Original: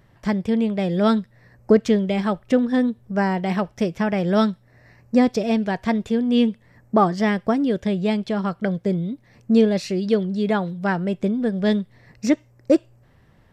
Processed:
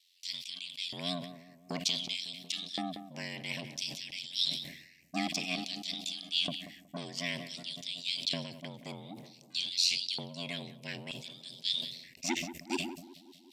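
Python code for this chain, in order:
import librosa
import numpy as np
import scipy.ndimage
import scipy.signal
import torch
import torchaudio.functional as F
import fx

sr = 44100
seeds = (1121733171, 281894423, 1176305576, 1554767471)

p1 = scipy.signal.sosfilt(scipy.signal.ellip(3, 1.0, 40, [290.0, 2400.0], 'bandstop', fs=sr, output='sos'), x)
p2 = fx.peak_eq(p1, sr, hz=640.0, db=-3.5, octaves=1.4)
p3 = 10.0 ** (-27.5 / 20.0) * np.tanh(p2 / 10.0 ** (-27.5 / 20.0))
p4 = p2 + (p3 * 10.0 ** (-7.0 / 20.0))
p5 = fx.filter_lfo_highpass(p4, sr, shape='square', hz=0.54, low_hz=760.0, high_hz=4000.0, q=2.7)
p6 = p5 * np.sin(2.0 * np.pi * 44.0 * np.arange(len(p5)) / sr)
p7 = p6 + fx.echo_filtered(p6, sr, ms=184, feedback_pct=74, hz=1200.0, wet_db=-15.5, dry=0)
p8 = fx.sustainer(p7, sr, db_per_s=67.0)
y = p8 * 10.0 ** (2.0 / 20.0)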